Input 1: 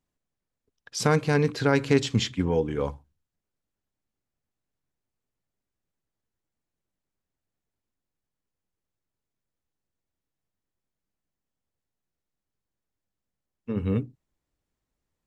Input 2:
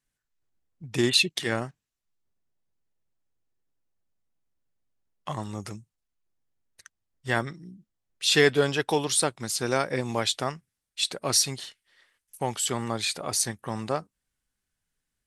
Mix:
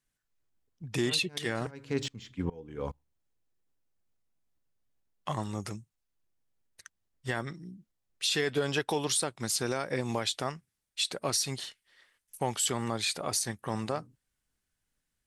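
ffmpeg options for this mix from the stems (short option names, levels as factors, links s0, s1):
-filter_complex "[0:a]deesser=0.65,aeval=exprs='val(0)*pow(10,-25*if(lt(mod(-2.4*n/s,1),2*abs(-2.4)/1000),1-mod(-2.4*n/s,1)/(2*abs(-2.4)/1000),(mod(-2.4*n/s,1)-2*abs(-2.4)/1000)/(1-2*abs(-2.4)/1000))/20)':c=same,volume=0.75[s0];[1:a]alimiter=limit=0.133:level=0:latency=1:release=148,volume=0.944,asplit=2[s1][s2];[s2]apad=whole_len=672978[s3];[s0][s3]sidechaincompress=threshold=0.01:ratio=8:attack=16:release=168[s4];[s4][s1]amix=inputs=2:normalize=0"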